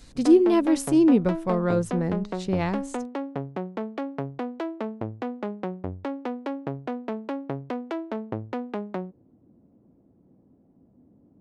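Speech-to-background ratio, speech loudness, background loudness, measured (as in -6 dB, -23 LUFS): 11.0 dB, -22.5 LUFS, -33.5 LUFS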